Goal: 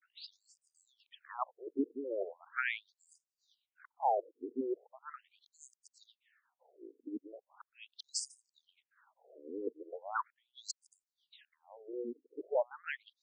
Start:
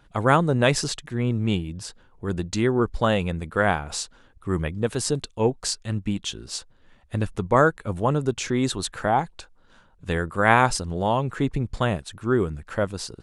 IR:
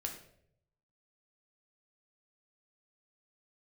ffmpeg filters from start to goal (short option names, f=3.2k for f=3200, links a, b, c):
-filter_complex "[0:a]areverse,acrossover=split=640[a][b];[a]aeval=exprs='val(0)*(1-0.5/2+0.5/2*cos(2*PI*9.5*n/s))':c=same[c];[b]aeval=exprs='val(0)*(1-0.5/2-0.5/2*cos(2*PI*9.5*n/s))':c=same[d];[c][d]amix=inputs=2:normalize=0,afftfilt=real='re*between(b*sr/1024,340*pow(6800/340,0.5+0.5*sin(2*PI*0.39*pts/sr))/1.41,340*pow(6800/340,0.5+0.5*sin(2*PI*0.39*pts/sr))*1.41)':imag='im*between(b*sr/1024,340*pow(6800/340,0.5+0.5*sin(2*PI*0.39*pts/sr))/1.41,340*pow(6800/340,0.5+0.5*sin(2*PI*0.39*pts/sr))*1.41)':win_size=1024:overlap=0.75,volume=-5.5dB"